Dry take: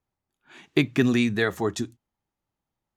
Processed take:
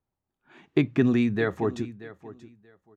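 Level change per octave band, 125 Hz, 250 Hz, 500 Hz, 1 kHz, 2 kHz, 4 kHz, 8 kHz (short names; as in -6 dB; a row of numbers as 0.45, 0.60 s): 0.0 dB, 0.0 dB, -0.5 dB, -2.0 dB, -5.5 dB, -9.5 dB, under -10 dB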